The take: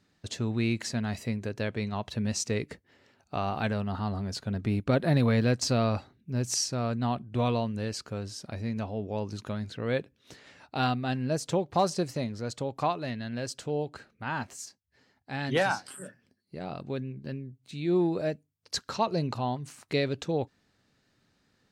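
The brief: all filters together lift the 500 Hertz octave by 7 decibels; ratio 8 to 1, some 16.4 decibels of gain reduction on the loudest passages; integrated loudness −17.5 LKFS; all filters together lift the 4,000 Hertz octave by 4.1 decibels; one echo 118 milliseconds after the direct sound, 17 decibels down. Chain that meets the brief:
parametric band 500 Hz +8.5 dB
parametric band 4,000 Hz +5 dB
downward compressor 8 to 1, threshold −33 dBFS
single-tap delay 118 ms −17 dB
level +20.5 dB

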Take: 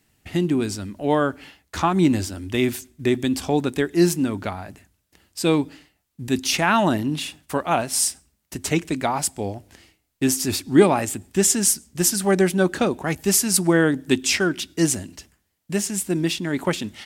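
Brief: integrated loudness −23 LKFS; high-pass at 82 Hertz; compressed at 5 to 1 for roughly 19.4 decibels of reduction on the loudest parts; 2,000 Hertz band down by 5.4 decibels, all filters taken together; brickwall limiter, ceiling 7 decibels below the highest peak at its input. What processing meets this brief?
high-pass filter 82 Hz
parametric band 2,000 Hz −7.5 dB
downward compressor 5 to 1, threshold −31 dBFS
level +13 dB
brickwall limiter −11.5 dBFS

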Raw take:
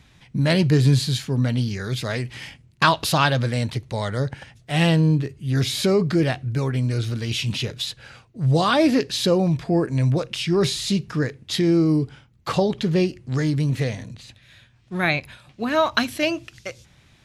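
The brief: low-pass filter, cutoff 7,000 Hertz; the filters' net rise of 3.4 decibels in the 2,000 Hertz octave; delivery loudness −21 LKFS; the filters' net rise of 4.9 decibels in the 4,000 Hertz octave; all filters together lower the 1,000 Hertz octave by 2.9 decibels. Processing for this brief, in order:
low-pass filter 7,000 Hz
parametric band 1,000 Hz −5.5 dB
parametric band 2,000 Hz +5 dB
parametric band 4,000 Hz +5 dB

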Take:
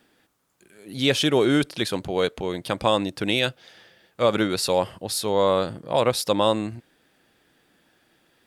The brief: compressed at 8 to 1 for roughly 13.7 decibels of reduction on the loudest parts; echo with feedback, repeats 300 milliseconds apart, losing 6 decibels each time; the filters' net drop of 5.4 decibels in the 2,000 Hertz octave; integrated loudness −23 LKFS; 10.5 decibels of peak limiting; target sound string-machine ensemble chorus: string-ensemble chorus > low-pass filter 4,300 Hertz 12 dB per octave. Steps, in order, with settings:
parametric band 2,000 Hz −7 dB
downward compressor 8 to 1, threshold −30 dBFS
brickwall limiter −26 dBFS
repeating echo 300 ms, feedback 50%, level −6 dB
string-ensemble chorus
low-pass filter 4,300 Hz 12 dB per octave
level +18 dB

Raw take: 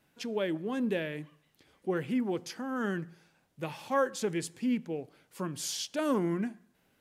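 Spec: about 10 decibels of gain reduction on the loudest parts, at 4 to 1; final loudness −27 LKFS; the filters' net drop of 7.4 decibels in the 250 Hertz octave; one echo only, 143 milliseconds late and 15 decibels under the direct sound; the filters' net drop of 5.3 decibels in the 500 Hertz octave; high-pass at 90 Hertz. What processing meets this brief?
high-pass filter 90 Hz
parametric band 250 Hz −8 dB
parametric band 500 Hz −4 dB
downward compressor 4 to 1, threshold −37 dBFS
single-tap delay 143 ms −15 dB
level +14.5 dB

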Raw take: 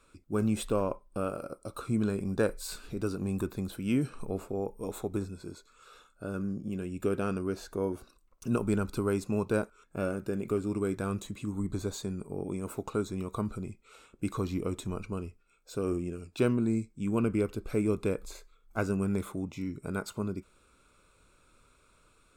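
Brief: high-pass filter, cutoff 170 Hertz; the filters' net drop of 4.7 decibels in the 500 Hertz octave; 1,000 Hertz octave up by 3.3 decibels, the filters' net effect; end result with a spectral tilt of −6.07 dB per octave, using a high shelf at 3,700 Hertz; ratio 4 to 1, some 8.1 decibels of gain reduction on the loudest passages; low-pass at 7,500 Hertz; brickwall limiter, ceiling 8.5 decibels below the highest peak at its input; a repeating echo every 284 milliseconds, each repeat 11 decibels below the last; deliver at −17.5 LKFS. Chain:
high-pass filter 170 Hz
low-pass filter 7,500 Hz
parametric band 500 Hz −7 dB
parametric band 1,000 Hz +6.5 dB
high-shelf EQ 3,700 Hz −6.5 dB
downward compressor 4 to 1, threshold −35 dBFS
brickwall limiter −29 dBFS
repeating echo 284 ms, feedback 28%, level −11 dB
level +24.5 dB

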